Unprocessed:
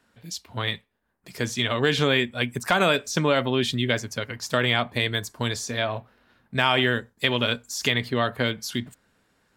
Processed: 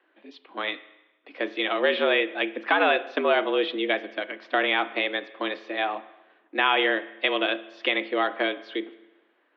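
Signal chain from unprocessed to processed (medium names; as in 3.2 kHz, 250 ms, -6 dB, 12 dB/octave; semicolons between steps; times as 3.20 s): spring tank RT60 1 s, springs 33/48 ms, chirp 50 ms, DRR 15 dB; mistuned SSB +96 Hz 190–3200 Hz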